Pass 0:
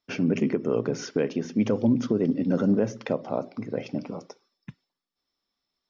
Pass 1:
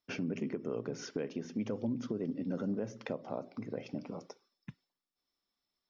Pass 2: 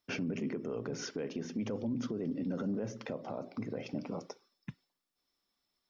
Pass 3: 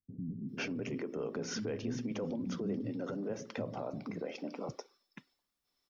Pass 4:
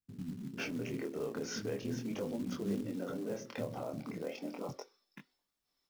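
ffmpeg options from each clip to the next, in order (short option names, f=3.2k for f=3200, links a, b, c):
-af "acompressor=threshold=-33dB:ratio=2,volume=-5dB"
-af "alimiter=level_in=8dB:limit=-24dB:level=0:latency=1:release=14,volume=-8dB,volume=4dB"
-filter_complex "[0:a]acrossover=split=230[a][b];[b]adelay=490[c];[a][c]amix=inputs=2:normalize=0,volume=1dB"
-af "flanger=delay=20:depth=6.5:speed=0.38,acrusher=bits=5:mode=log:mix=0:aa=0.000001,volume=2dB"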